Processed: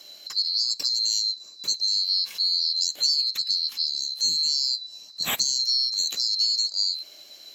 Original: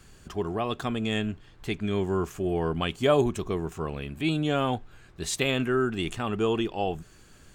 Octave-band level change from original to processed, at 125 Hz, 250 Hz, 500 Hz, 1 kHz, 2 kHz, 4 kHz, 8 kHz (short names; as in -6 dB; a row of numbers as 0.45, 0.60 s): under -25 dB, under -25 dB, under -25 dB, -15.0 dB, -8.0 dB, +17.0 dB, +12.0 dB